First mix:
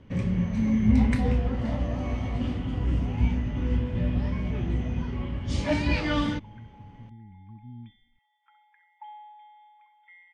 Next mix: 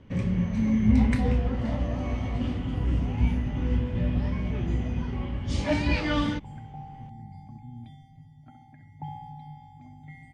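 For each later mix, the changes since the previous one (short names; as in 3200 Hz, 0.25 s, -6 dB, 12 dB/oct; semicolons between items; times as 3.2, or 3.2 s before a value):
second sound: remove brick-wall FIR band-pass 820–3600 Hz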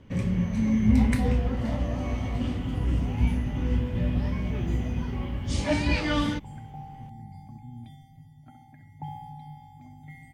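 master: remove air absorption 65 m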